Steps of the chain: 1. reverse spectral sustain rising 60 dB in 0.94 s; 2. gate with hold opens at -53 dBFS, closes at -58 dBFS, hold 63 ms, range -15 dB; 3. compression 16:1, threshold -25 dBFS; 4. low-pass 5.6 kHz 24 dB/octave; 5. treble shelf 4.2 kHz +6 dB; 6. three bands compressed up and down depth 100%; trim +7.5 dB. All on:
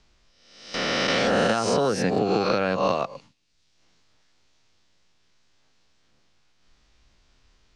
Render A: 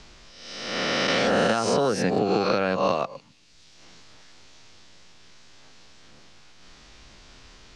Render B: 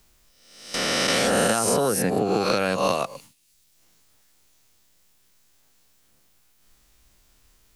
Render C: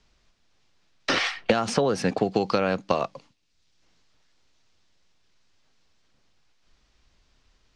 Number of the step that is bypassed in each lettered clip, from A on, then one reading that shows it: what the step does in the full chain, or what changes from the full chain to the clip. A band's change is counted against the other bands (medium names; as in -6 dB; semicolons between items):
2, momentary loudness spread change +3 LU; 4, 8 kHz band +10.0 dB; 1, crest factor change +7.5 dB